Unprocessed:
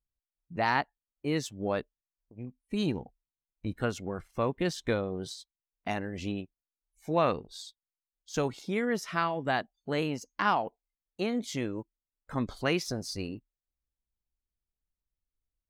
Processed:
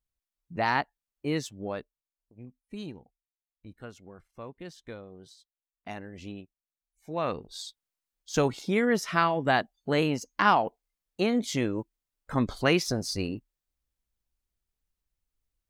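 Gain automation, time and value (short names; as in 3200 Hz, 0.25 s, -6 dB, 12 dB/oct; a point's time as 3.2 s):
1.32 s +1 dB
1.8 s -5 dB
2.61 s -5 dB
3.01 s -13 dB
5.26 s -13 dB
5.92 s -6.5 dB
7.12 s -6.5 dB
7.64 s +5 dB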